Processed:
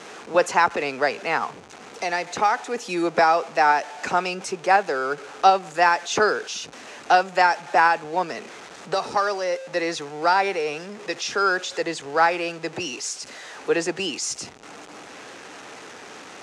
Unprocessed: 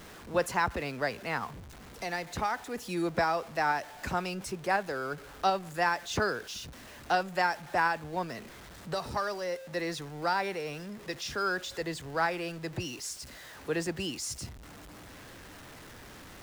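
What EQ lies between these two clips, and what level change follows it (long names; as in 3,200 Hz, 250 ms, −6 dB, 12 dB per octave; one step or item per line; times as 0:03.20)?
loudspeaker in its box 260–8,700 Hz, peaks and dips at 440 Hz +5 dB, 790 Hz +5 dB, 1,300 Hz +3 dB, 2,500 Hz +4 dB, 6,300 Hz +4 dB
+7.5 dB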